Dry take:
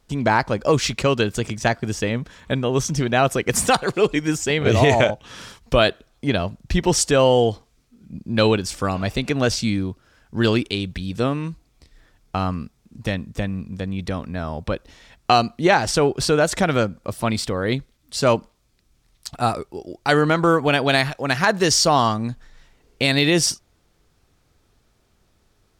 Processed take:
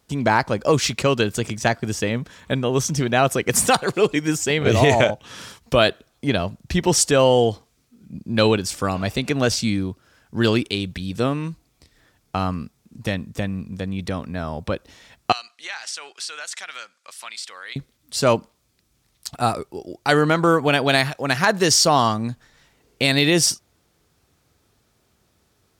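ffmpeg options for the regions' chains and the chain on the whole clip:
-filter_complex "[0:a]asettb=1/sr,asplit=3[a][b][c];[a]atrim=end=15.324[d];[b]atrim=start=15.32:end=17.76,asetpts=PTS-STARTPTS,afade=t=in:d=0.004:c=qsin,afade=t=out:st=2.436:d=0.004:c=qsin,asuperpass=centerf=4000:order=4:qfactor=0.54,acompressor=threshold=-34dB:ratio=2:attack=3.2:release=140:knee=1:detection=peak[e];[c]atrim=start=17.756[f];[d][e]acrossfade=d=0.004:c1=hsin:c2=qsin[g];[g][f]acrossfade=d=0.004:c1=qsin:c2=hsin,highpass=70,highshelf=f=9k:g=6.5"

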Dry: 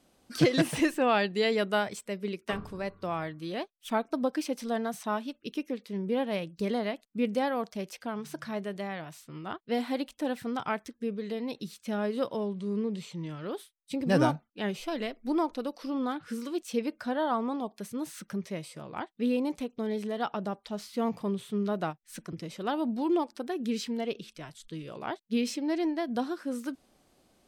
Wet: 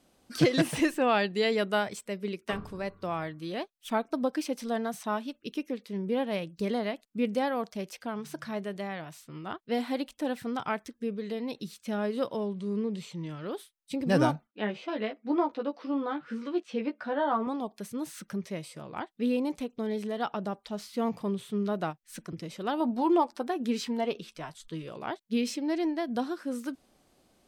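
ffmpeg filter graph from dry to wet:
-filter_complex "[0:a]asettb=1/sr,asplit=3[a][b][c];[a]atrim=end=14.474[d];[b]atrim=start=14.47:end=17.47,asetpts=PTS-STARTPTS,afade=t=in:d=0.004:c=qsin,afade=t=out:st=2.996:d=0.004:c=qsin,highpass=210,lowpass=2.9k,asplit=2[e][f];[f]adelay=14,volume=-4dB[g];[e][g]amix=inputs=2:normalize=0,atrim=end_sample=132300[h];[c]atrim=start=17.466[i];[d][h]acrossfade=d=0.004:c1=hsin:c2=qsin[j];[j][i]acrossfade=d=0.004:c1=qsin:c2=hsin,asettb=1/sr,asplit=3[k][l][m];[k]atrim=end=22.804[n];[l]atrim=start=22.8:end=24.89,asetpts=PTS-STARTPTS,afade=t=in:d=0.004:c=qsin,afade=t=out:st=2.086:d=0.004:c=qsin,equalizer=f=900:w=1.1:g=8,asplit=2[o][p];[p]adelay=12,volume=-12dB[q];[o][q]amix=inputs=2:normalize=0,atrim=end_sample=92169[r];[m]atrim=start=24.886[s];[n][r]acrossfade=d=0.004:c1=hsin:c2=qsin[t];[t][s]acrossfade=d=0.004:c1=qsin:c2=hsin"

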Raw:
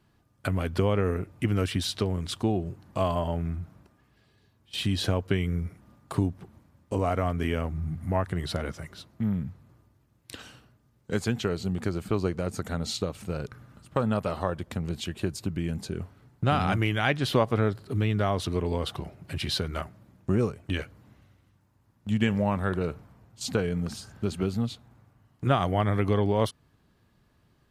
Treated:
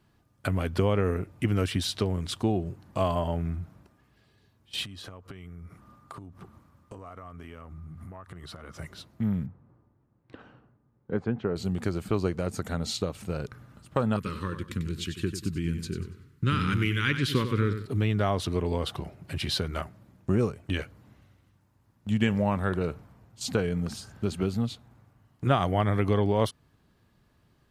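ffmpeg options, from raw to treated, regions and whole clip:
-filter_complex "[0:a]asettb=1/sr,asplit=3[a][b][c];[a]atrim=end=4.844[d];[b]atrim=start=4.84:end=8.77,asetpts=PTS-STARTPTS,afade=t=in:d=0.004:c=qsin,afade=t=out:st=3.926:d=0.004:c=qsin,equalizer=f=1.2k:w=3.8:g=11,acompressor=threshold=-39dB:ratio=12:attack=3.2:release=140:knee=1:detection=peak[e];[c]atrim=start=8.766[f];[d][e]acrossfade=d=0.004:c1=hsin:c2=qsin[g];[g][f]acrossfade=d=0.004:c1=qsin:c2=hsin,asettb=1/sr,asplit=3[h][i][j];[h]atrim=end=9.464[k];[i]atrim=start=9.46:end=11.56,asetpts=PTS-STARTPTS,afade=t=in:d=0.004:c=qsin,afade=t=out:st=2.096:d=0.004:c=qsin,lowpass=1.2k,equalizer=f=69:w=1.3:g=-8,bandreject=f=640:w=20[l];[j]atrim=start=11.556[m];[k][l]acrossfade=d=0.004:c1=hsin:c2=qsin[n];[n][m]acrossfade=d=0.004:c1=qsin:c2=hsin,asettb=1/sr,asplit=3[o][p][q];[o]atrim=end=14.164[r];[p]atrim=start=14.16:end=17.86,asetpts=PTS-STARTPTS,afade=t=in:d=0.004:c=qsin,afade=t=out:st=3.696:d=0.004:c=qsin,asuperstop=centerf=700:order=4:qfactor=0.89,aecho=1:1:95|190|285|380:0.335|0.111|0.0365|0.012,atrim=end_sample=163170[s];[q]atrim=start=17.856[t];[r][s]acrossfade=d=0.004:c1=hsin:c2=qsin[u];[u][t]acrossfade=d=0.004:c1=qsin:c2=hsin"

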